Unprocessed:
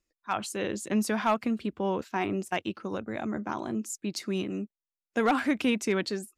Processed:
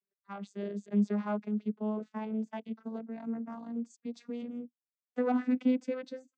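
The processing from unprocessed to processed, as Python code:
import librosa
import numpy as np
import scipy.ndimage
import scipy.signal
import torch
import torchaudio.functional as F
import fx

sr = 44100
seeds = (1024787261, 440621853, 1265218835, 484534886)

y = fx.vocoder_glide(x, sr, note=55, semitones=5)
y = fx.dynamic_eq(y, sr, hz=540.0, q=0.86, threshold_db=-39.0, ratio=4.0, max_db=4)
y = y * librosa.db_to_amplitude(-4.5)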